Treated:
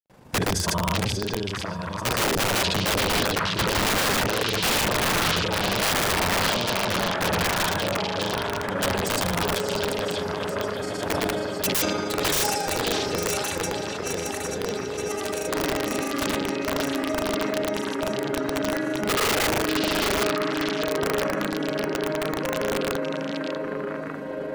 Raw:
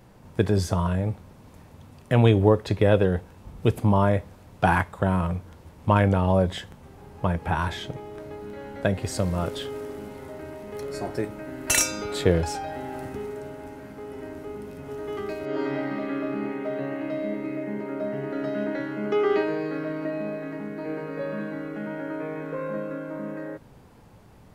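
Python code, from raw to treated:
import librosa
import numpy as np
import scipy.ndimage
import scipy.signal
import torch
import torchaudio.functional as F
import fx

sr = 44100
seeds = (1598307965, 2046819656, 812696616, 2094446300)

y = fx.reverse_delay_fb(x, sr, ms=448, feedback_pct=84, wet_db=-9)
y = fx.low_shelf(y, sr, hz=120.0, db=-11.0)
y = fx.granulator(y, sr, seeds[0], grain_ms=64.0, per_s=26.0, spray_ms=100.0, spread_st=0)
y = (np.mod(10.0 ** (22.5 / 20.0) * y + 1.0, 2.0) - 1.0) / 10.0 ** (22.5 / 20.0)
y = fx.echo_stepped(y, sr, ms=595, hz=3600.0, octaves=-1.4, feedback_pct=70, wet_db=-1.5)
y = fx.sustainer(y, sr, db_per_s=22.0)
y = F.gain(torch.from_numpy(y), 4.5).numpy()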